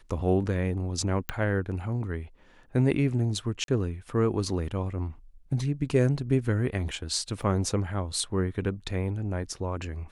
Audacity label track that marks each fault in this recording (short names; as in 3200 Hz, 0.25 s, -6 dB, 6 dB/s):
1.290000	1.290000	pop -15 dBFS
3.640000	3.680000	gap 42 ms
7.420000	7.430000	gap 5.2 ms